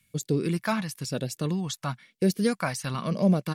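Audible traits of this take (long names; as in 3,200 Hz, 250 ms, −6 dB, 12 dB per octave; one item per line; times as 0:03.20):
phaser sweep stages 2, 1 Hz, lowest notch 370–1,100 Hz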